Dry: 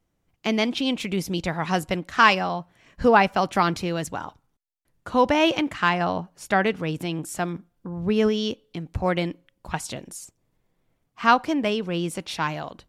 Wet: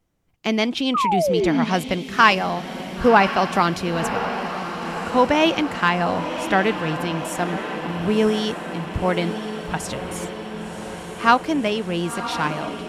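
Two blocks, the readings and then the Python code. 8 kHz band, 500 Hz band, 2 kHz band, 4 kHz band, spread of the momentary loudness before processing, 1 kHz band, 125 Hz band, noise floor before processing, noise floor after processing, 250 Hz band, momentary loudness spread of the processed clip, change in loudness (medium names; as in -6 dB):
+2.5 dB, +3.5 dB, +3.0 dB, +3.0 dB, 15 LU, +3.0 dB, +3.0 dB, -74 dBFS, -34 dBFS, +3.0 dB, 13 LU, +2.5 dB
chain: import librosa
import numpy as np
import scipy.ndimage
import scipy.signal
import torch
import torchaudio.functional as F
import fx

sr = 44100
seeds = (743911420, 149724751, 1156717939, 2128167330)

y = fx.echo_diffused(x, sr, ms=1048, feedback_pct=69, wet_db=-9.5)
y = fx.spec_paint(y, sr, seeds[0], shape='fall', start_s=0.94, length_s=0.71, low_hz=220.0, high_hz=1300.0, level_db=-22.0)
y = F.gain(torch.from_numpy(y), 2.0).numpy()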